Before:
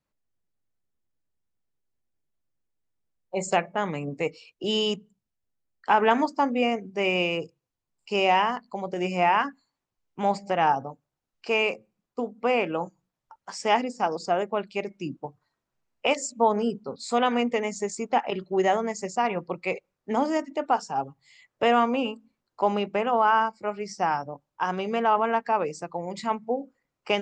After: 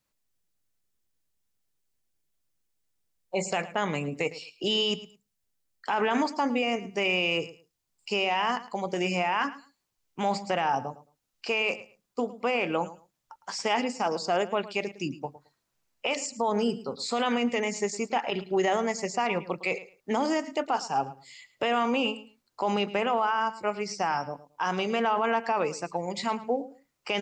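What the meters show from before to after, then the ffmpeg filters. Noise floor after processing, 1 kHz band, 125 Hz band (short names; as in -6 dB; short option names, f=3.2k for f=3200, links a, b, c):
-80 dBFS, -4.0 dB, -1.0 dB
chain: -filter_complex "[0:a]acrossover=split=4800[a][b];[b]acompressor=threshold=-51dB:ratio=4:attack=1:release=60[c];[a][c]amix=inputs=2:normalize=0,highshelf=f=2.4k:g=10.5,alimiter=limit=-17dB:level=0:latency=1:release=22,aecho=1:1:109|218:0.15|0.0269"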